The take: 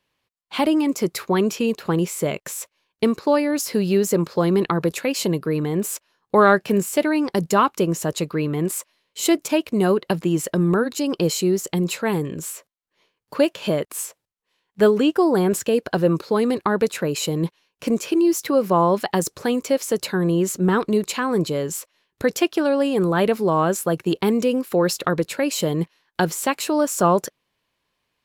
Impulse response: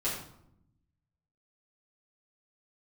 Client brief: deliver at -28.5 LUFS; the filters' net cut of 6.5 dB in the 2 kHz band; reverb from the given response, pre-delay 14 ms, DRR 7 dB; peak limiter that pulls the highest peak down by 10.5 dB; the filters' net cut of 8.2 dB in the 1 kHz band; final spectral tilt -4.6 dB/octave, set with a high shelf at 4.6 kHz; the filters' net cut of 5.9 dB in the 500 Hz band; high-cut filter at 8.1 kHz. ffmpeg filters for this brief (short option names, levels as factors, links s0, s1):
-filter_complex "[0:a]lowpass=8100,equalizer=f=500:t=o:g=-6,equalizer=f=1000:t=o:g=-7,equalizer=f=2000:t=o:g=-7.5,highshelf=f=4600:g=8.5,alimiter=limit=0.119:level=0:latency=1,asplit=2[s0][s1];[1:a]atrim=start_sample=2205,adelay=14[s2];[s1][s2]afir=irnorm=-1:irlink=0,volume=0.224[s3];[s0][s3]amix=inputs=2:normalize=0,volume=0.841"